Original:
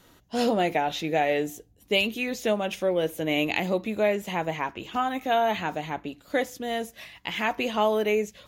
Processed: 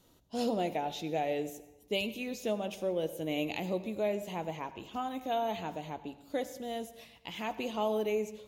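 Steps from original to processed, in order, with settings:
parametric band 1,700 Hz −10 dB 1.1 octaves
on a send: convolution reverb RT60 1.0 s, pre-delay 74 ms, DRR 13.5 dB
on the sum: level −7 dB

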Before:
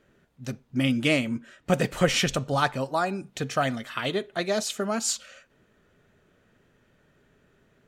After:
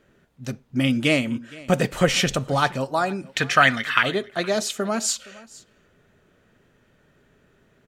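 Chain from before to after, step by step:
0:03.25–0:04.03: drawn EQ curve 650 Hz 0 dB, 1,800 Hz +14 dB, 7,600 Hz +2 dB
single-tap delay 467 ms −21.5 dB
level +3 dB

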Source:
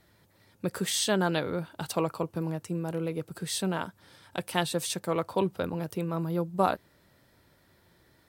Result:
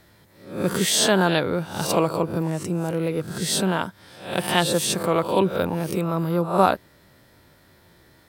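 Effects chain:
peak hold with a rise ahead of every peak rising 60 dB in 0.49 s
level +6.5 dB

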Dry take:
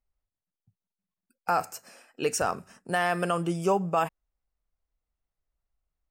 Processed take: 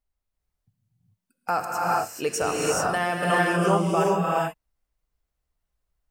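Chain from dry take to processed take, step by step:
reverb whose tail is shaped and stops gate 460 ms rising, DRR −4 dB

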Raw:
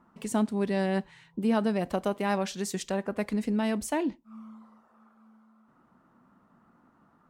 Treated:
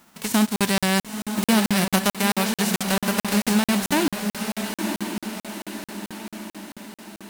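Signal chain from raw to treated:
spectral envelope flattened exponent 0.3
feedback delay with all-pass diffusion 972 ms, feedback 53%, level −6 dB
regular buffer underruns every 0.22 s, samples 2,048, zero, from 0:00.56
level +7 dB

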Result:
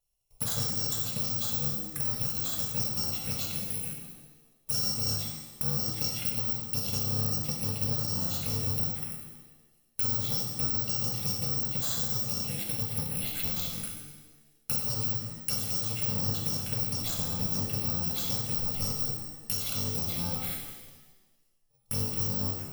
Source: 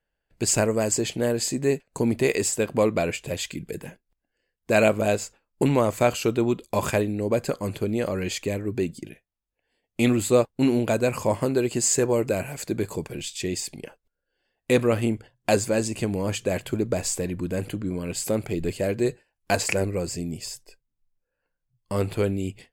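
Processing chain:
samples in bit-reversed order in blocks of 128 samples
downward compressor 6 to 1, threshold −28 dBFS, peak gain reduction 13.5 dB
phaser swept by the level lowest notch 260 Hz, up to 2,300 Hz, full sweep at −28 dBFS
reverb with rising layers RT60 1.2 s, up +7 semitones, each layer −8 dB, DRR −0.5 dB

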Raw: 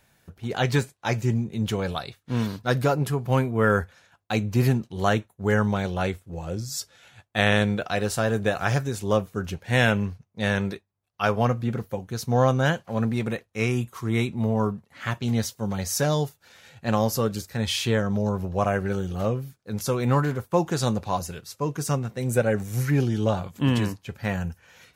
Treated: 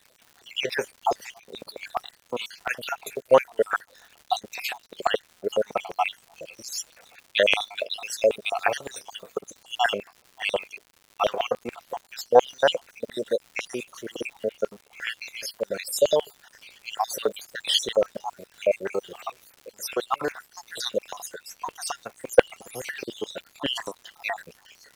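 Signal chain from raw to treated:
time-frequency cells dropped at random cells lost 64%
in parallel at +2.5 dB: output level in coarse steps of 10 dB
on the sum: auto-filter high-pass square 7.1 Hz 530–2,600 Hz
surface crackle 200 per second −38 dBFS
level −1.5 dB

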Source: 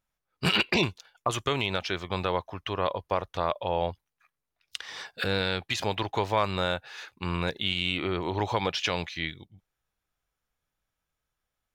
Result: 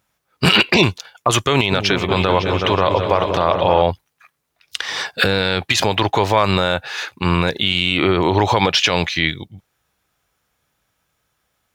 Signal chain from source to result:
high-pass filter 73 Hz
0:01.53–0:03.82: echo whose low-pass opens from repeat to repeat 185 ms, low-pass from 400 Hz, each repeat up 2 octaves, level −6 dB
boost into a limiter +18 dB
level −2 dB

